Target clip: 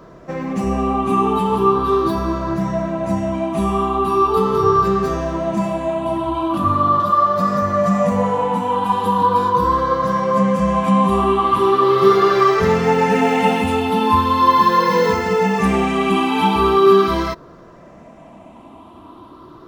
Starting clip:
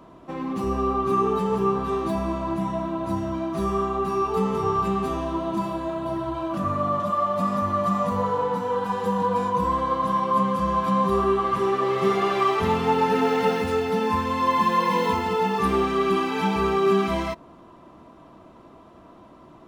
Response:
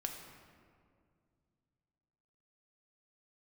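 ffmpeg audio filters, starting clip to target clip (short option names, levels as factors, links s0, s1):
-af "afftfilt=real='re*pow(10,9/40*sin(2*PI*(0.57*log(max(b,1)*sr/1024/100)/log(2)-(0.4)*(pts-256)/sr)))':imag='im*pow(10,9/40*sin(2*PI*(0.57*log(max(b,1)*sr/1024/100)/log(2)-(0.4)*(pts-256)/sr)))':win_size=1024:overlap=0.75,volume=2"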